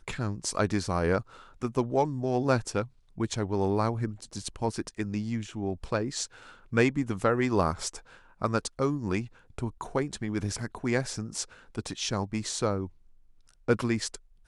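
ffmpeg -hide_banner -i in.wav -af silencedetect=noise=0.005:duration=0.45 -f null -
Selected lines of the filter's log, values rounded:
silence_start: 12.89
silence_end: 13.49 | silence_duration: 0.60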